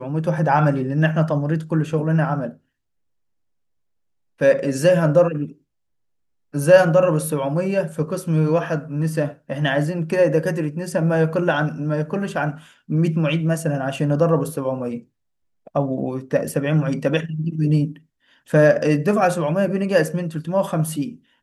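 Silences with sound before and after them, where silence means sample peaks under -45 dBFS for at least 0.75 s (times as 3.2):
2.57–4.39
5.53–6.54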